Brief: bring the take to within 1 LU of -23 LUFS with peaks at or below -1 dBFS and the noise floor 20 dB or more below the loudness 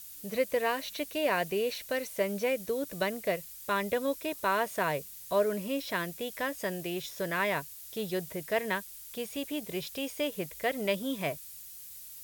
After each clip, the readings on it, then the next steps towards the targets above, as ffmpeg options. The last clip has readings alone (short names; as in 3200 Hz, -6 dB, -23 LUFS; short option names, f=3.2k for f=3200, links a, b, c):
noise floor -47 dBFS; noise floor target -53 dBFS; loudness -32.5 LUFS; peak -15.5 dBFS; loudness target -23.0 LUFS
-> -af "afftdn=nr=6:nf=-47"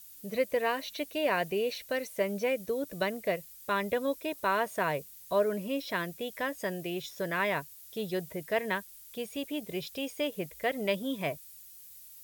noise floor -51 dBFS; noise floor target -53 dBFS
-> -af "afftdn=nr=6:nf=-51"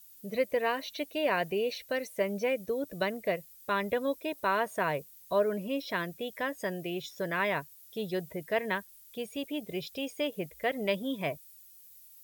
noise floor -55 dBFS; loudness -33.0 LUFS; peak -15.5 dBFS; loudness target -23.0 LUFS
-> -af "volume=10dB"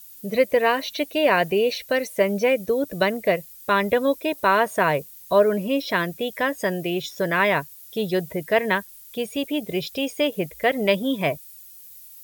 loudness -23.0 LUFS; peak -5.5 dBFS; noise floor -45 dBFS